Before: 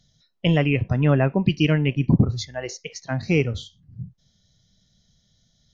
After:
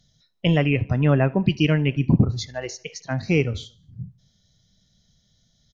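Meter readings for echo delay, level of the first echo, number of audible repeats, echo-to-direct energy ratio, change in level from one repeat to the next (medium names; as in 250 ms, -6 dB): 76 ms, -24.0 dB, 2, -23.0 dB, -6.0 dB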